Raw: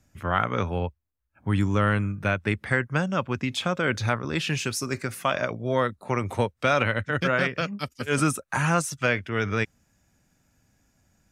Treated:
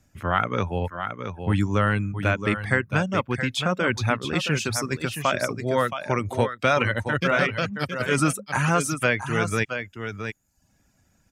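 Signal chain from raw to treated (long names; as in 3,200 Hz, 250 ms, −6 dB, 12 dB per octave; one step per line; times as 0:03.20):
on a send: single-tap delay 671 ms −7.5 dB
on the sum: reverb reduction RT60 0.51 s
level +2 dB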